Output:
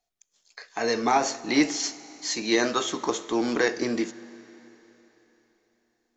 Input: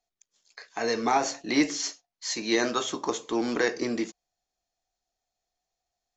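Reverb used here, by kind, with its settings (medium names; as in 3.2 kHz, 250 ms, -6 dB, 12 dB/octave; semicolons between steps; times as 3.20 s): Schroeder reverb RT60 3.8 s, combs from 26 ms, DRR 16.5 dB; trim +2 dB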